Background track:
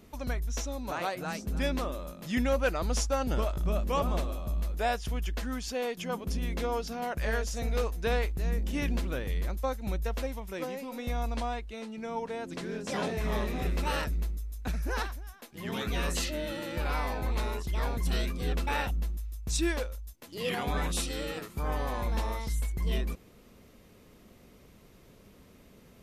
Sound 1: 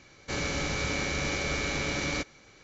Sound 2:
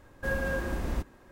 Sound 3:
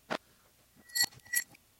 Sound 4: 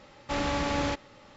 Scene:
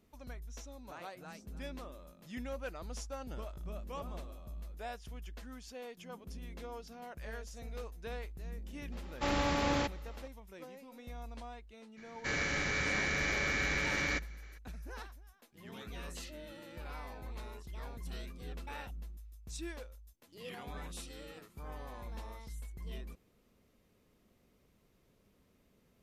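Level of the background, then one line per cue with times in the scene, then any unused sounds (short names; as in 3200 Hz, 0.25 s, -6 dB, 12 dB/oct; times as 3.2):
background track -14 dB
8.92 add 4 -3 dB
11.96 add 1 -6.5 dB, fades 0.02 s + bell 1800 Hz +12 dB 0.6 oct
not used: 2, 3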